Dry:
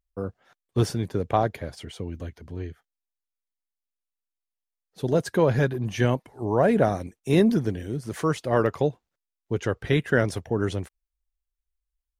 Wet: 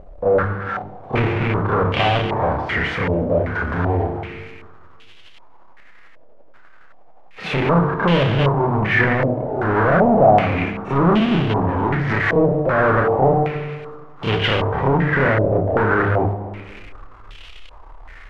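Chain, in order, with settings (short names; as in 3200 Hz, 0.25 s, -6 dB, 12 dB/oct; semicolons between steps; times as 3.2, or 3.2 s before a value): spectral whitening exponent 0.6; notches 50/100/150/200/250/300/350/400/450 Hz; treble ducked by the level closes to 800 Hz, closed at -20.5 dBFS; granular stretch 1.5×, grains 0.173 s; power-law curve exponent 0.35; on a send at -8 dB: reverb RT60 1.9 s, pre-delay 4 ms; on the sum: stepped low-pass 2.6 Hz 600–3000 Hz; gain -2.5 dB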